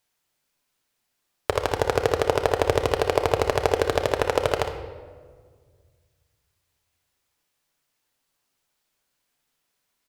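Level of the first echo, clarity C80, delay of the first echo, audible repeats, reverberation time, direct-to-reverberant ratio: -10.0 dB, 10.0 dB, 60 ms, 1, 1.7 s, 4.5 dB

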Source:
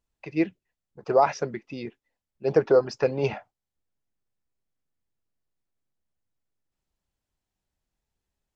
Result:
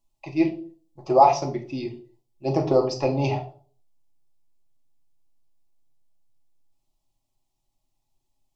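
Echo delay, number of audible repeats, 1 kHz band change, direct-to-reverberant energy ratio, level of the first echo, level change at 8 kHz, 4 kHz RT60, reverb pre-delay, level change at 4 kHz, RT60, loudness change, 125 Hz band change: none, none, +7.0 dB, 2.0 dB, none, n/a, 0.35 s, 4 ms, +5.0 dB, 0.45 s, +2.0 dB, +6.5 dB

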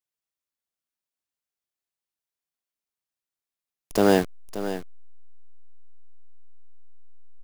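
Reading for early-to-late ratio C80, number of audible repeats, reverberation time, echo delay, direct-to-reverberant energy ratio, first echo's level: none, 1, none, 0.579 s, none, -11.5 dB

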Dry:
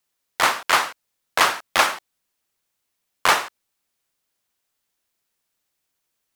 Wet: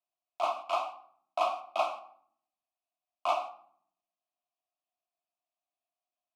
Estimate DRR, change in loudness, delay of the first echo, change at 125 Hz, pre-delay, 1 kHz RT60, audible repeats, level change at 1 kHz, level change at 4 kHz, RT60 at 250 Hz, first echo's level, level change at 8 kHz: 2.5 dB, -13.0 dB, none, under -30 dB, 3 ms, 0.60 s, none, -9.5 dB, -20.0 dB, 1.0 s, none, -27.5 dB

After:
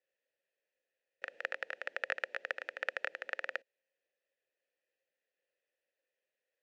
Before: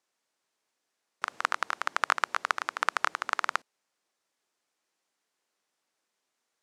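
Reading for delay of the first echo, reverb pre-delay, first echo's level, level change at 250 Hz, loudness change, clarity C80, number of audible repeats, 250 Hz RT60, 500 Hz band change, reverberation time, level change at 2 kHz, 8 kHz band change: none, none, none, -12.0 dB, -9.0 dB, none, none, none, -0.5 dB, none, -6.0 dB, under -20 dB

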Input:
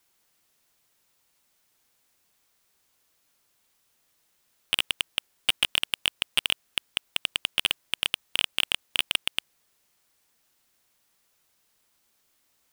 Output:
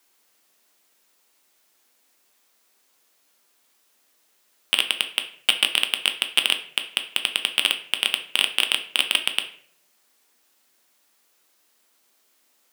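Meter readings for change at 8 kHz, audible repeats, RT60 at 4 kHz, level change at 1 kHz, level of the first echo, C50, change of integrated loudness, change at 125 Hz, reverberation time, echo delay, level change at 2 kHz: +5.0 dB, none, 0.40 s, +5.5 dB, none, 11.5 dB, +5.0 dB, n/a, 0.60 s, none, +5.5 dB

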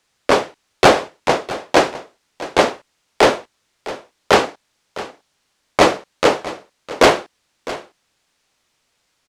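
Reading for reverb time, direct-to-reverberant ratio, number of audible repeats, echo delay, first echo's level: none, none, 1, 0.657 s, -16.0 dB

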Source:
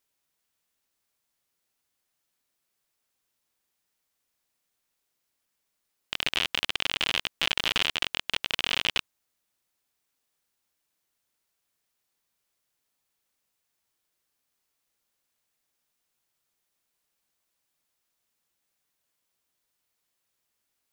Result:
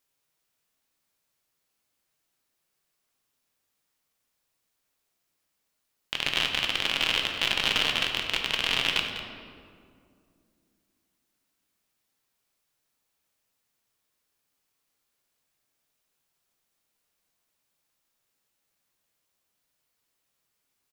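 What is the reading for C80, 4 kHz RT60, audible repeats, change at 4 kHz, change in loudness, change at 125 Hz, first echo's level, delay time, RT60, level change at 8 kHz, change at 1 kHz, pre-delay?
5.0 dB, 1.2 s, 1, +2.0 dB, +1.5 dB, +3.5 dB, -12.0 dB, 0.199 s, 2.3 s, +1.0 dB, +2.0 dB, 6 ms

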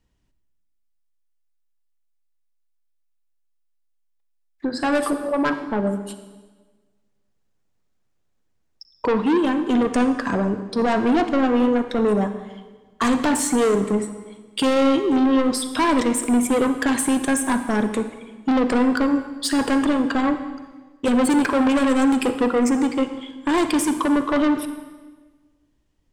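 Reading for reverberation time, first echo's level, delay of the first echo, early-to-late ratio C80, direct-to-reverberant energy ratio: 1.4 s, none, none, 11.0 dB, 9.0 dB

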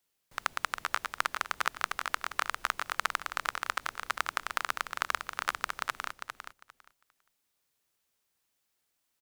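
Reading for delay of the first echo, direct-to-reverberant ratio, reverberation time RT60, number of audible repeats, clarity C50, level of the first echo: 0.401 s, none, none, 2, none, -7.0 dB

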